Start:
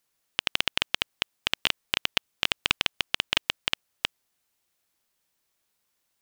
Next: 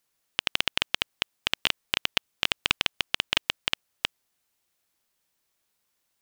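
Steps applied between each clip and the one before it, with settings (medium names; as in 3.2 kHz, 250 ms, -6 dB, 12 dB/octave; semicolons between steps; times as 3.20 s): no audible change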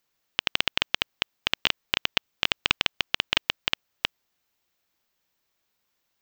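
peaking EQ 10 kHz -15 dB 0.5 oct; trim +1.5 dB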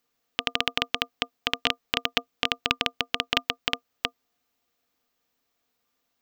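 small resonant body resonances 260/470/700/1200 Hz, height 12 dB, ringing for 100 ms; trim -1 dB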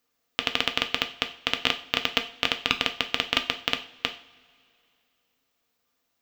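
two-slope reverb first 0.4 s, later 2.6 s, from -22 dB, DRR 6 dB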